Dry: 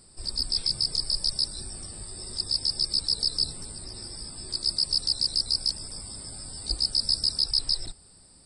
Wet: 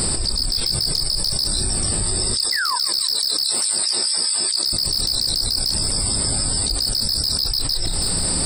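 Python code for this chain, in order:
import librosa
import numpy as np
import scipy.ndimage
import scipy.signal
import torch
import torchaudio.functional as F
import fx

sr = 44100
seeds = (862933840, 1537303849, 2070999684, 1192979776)

y = fx.filter_lfo_highpass(x, sr, shape='sine', hz=4.7, low_hz=340.0, high_hz=2900.0, q=0.77, at=(2.34, 4.73))
y = fx.spec_paint(y, sr, seeds[0], shape='fall', start_s=2.52, length_s=0.24, low_hz=930.0, high_hz=2100.0, level_db=-32.0)
y = np.clip(y, -10.0 ** (-21.0 / 20.0), 10.0 ** (-21.0 / 20.0))
y = fx.doubler(y, sr, ms=29.0, db=-13.0)
y = fx.echo_feedback(y, sr, ms=164, feedback_pct=48, wet_db=-23.5)
y = fx.env_flatten(y, sr, amount_pct=100)
y = y * librosa.db_to_amplitude(3.5)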